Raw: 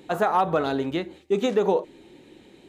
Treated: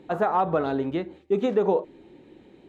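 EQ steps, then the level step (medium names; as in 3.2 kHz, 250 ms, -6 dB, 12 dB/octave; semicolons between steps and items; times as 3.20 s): low-pass 1.4 kHz 6 dB/octave; 0.0 dB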